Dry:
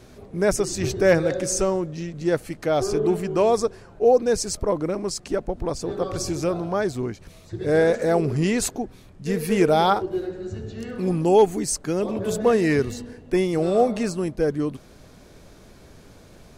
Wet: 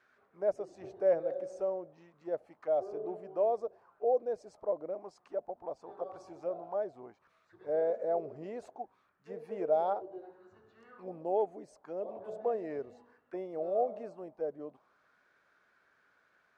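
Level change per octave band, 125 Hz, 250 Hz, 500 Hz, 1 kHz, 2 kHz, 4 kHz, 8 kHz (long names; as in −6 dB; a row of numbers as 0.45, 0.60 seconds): −29.5 dB, −22.5 dB, −11.5 dB, −12.0 dB, −25.0 dB, below −30 dB, below −35 dB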